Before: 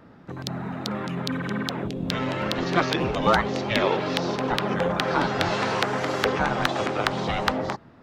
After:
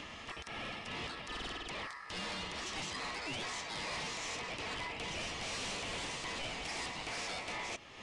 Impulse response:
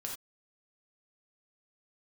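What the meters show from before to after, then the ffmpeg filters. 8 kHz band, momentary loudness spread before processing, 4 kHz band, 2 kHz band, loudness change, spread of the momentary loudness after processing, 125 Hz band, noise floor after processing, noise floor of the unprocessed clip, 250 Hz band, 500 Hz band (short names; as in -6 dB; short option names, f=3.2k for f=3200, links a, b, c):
-2.5 dB, 8 LU, -9.0 dB, -12.0 dB, -14.5 dB, 4 LU, -20.5 dB, -49 dBFS, -50 dBFS, -21.5 dB, -20.5 dB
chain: -af "highpass=f=1k:p=1,highshelf=f=2.9k:g=10.5,areverse,acompressor=threshold=-32dB:ratio=6,areverse,alimiter=limit=-22.5dB:level=0:latency=1:release=302,acompressor=mode=upward:threshold=-46dB:ratio=2.5,aeval=exprs='(tanh(141*val(0)+0.05)-tanh(0.05))/141':c=same,aeval=exprs='val(0)*sin(2*PI*1500*n/s)':c=same,aresample=22050,aresample=44100,volume=8.5dB"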